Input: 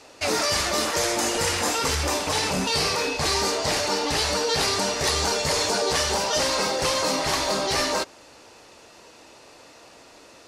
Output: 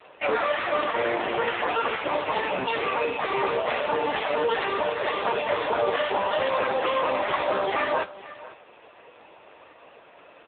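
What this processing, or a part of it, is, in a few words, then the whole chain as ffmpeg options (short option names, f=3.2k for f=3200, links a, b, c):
satellite phone: -af "highpass=370,lowpass=3.1k,aecho=1:1:494:0.133,volume=5dB" -ar 8000 -c:a libopencore_amrnb -b:a 5900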